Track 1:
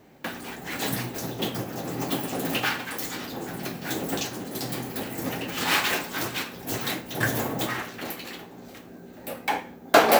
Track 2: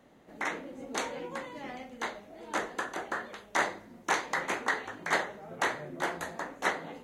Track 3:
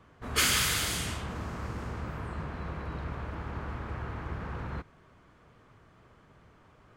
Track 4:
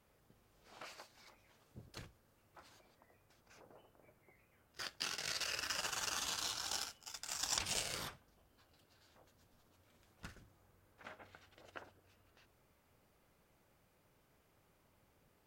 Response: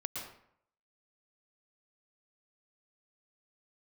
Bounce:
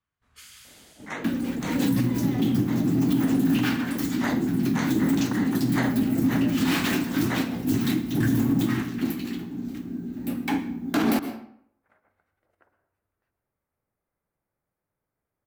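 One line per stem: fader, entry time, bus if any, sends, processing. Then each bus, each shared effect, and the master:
−4.5 dB, 1.00 s, send −13 dB, low shelf with overshoot 380 Hz +11.5 dB, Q 3
+2.5 dB, 0.65 s, no send, volume swells 113 ms
−15.0 dB, 0.00 s, no send, guitar amp tone stack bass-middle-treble 5-5-5
−15.0 dB, 0.85 s, send −6 dB, flat-topped bell 4,400 Hz −13 dB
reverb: on, RT60 0.65 s, pre-delay 106 ms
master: brickwall limiter −14 dBFS, peak gain reduction 10.5 dB

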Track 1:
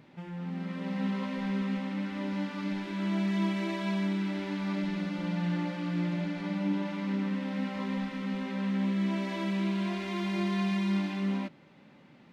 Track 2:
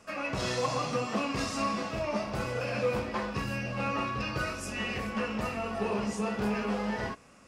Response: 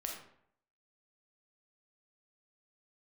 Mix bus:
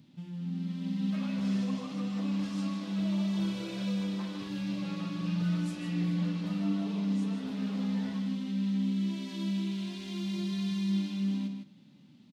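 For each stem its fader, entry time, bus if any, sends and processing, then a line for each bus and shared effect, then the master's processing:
−1.5 dB, 0.00 s, send −7 dB, echo send −5.5 dB, flat-topped bell 940 Hz −15.5 dB 3 octaves
−10.5 dB, 1.05 s, no send, echo send −8 dB, downward compressor, threshold −33 dBFS, peak gain reduction 9 dB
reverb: on, RT60 0.65 s, pre-delay 4 ms
echo: single-tap delay 156 ms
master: high-pass filter 100 Hz

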